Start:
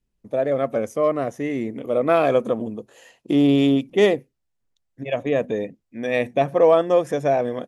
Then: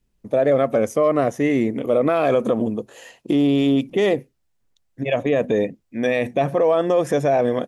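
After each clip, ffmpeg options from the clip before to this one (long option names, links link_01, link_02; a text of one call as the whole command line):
ffmpeg -i in.wav -af "alimiter=level_in=15dB:limit=-1dB:release=50:level=0:latency=1,volume=-8.5dB" out.wav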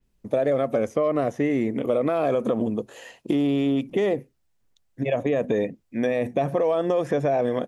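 ffmpeg -i in.wav -filter_complex "[0:a]acrossover=split=1000|2300|4800[link_01][link_02][link_03][link_04];[link_01]acompressor=threshold=-20dB:ratio=4[link_05];[link_02]acompressor=threshold=-38dB:ratio=4[link_06];[link_03]acompressor=threshold=-48dB:ratio=4[link_07];[link_04]acompressor=threshold=-53dB:ratio=4[link_08];[link_05][link_06][link_07][link_08]amix=inputs=4:normalize=0,adynamicequalizer=threshold=0.00501:dfrequency=4700:dqfactor=0.7:tfrequency=4700:tqfactor=0.7:attack=5:release=100:ratio=0.375:range=2:mode=cutabove:tftype=highshelf" out.wav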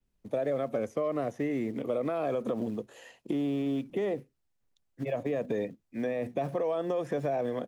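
ffmpeg -i in.wav -filter_complex "[0:a]acrossover=split=170|460|2000[link_01][link_02][link_03][link_04];[link_01]acrusher=bits=4:mode=log:mix=0:aa=0.000001[link_05];[link_04]alimiter=level_in=10.5dB:limit=-24dB:level=0:latency=1,volume=-10.5dB[link_06];[link_05][link_02][link_03][link_06]amix=inputs=4:normalize=0,volume=-8dB" out.wav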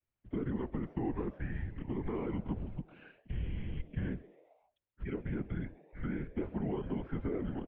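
ffmpeg -i in.wav -filter_complex "[0:a]afftfilt=real='hypot(re,im)*cos(2*PI*random(0))':imag='hypot(re,im)*sin(2*PI*random(1))':win_size=512:overlap=0.75,highpass=frequency=210:width_type=q:width=0.5412,highpass=frequency=210:width_type=q:width=1.307,lowpass=frequency=3300:width_type=q:width=0.5176,lowpass=frequency=3300:width_type=q:width=0.7071,lowpass=frequency=3300:width_type=q:width=1.932,afreqshift=-290,asplit=5[link_01][link_02][link_03][link_04][link_05];[link_02]adelay=133,afreqshift=140,volume=-22dB[link_06];[link_03]adelay=266,afreqshift=280,volume=-27dB[link_07];[link_04]adelay=399,afreqshift=420,volume=-32.1dB[link_08];[link_05]adelay=532,afreqshift=560,volume=-37.1dB[link_09];[link_01][link_06][link_07][link_08][link_09]amix=inputs=5:normalize=0,volume=1dB" out.wav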